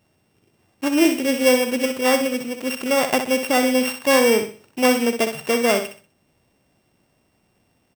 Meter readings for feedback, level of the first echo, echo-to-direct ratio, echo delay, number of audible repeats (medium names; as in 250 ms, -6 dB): 32%, -8.0 dB, -7.5 dB, 63 ms, 3